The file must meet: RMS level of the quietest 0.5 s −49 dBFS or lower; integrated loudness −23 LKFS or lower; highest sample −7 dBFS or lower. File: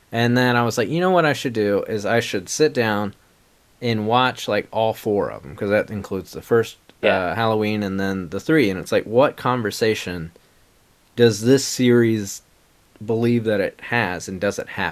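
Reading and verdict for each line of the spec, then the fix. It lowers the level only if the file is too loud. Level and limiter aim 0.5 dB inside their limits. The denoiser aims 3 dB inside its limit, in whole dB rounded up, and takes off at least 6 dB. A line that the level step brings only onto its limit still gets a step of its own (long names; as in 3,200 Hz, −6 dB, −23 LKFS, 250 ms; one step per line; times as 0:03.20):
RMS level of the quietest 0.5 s −57 dBFS: in spec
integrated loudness −20.5 LKFS: out of spec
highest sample −2.5 dBFS: out of spec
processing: level −3 dB
brickwall limiter −7.5 dBFS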